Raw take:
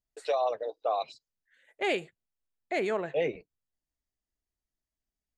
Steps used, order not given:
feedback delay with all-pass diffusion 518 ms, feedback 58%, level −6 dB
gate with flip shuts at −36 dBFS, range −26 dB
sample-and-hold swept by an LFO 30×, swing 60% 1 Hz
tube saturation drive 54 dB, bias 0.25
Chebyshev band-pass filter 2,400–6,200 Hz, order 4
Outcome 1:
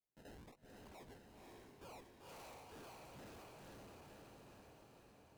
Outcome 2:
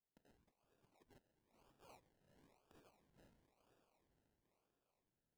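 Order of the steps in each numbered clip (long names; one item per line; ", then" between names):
Chebyshev band-pass filter, then sample-and-hold swept by an LFO, then feedback delay with all-pass diffusion, then tube saturation, then gate with flip
gate with flip, then Chebyshev band-pass filter, then tube saturation, then feedback delay with all-pass diffusion, then sample-and-hold swept by an LFO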